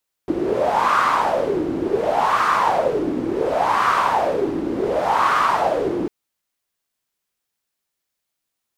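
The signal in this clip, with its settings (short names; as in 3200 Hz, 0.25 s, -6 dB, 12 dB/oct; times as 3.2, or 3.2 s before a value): wind-like swept noise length 5.80 s, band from 310 Hz, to 1200 Hz, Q 5.6, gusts 4, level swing 5.5 dB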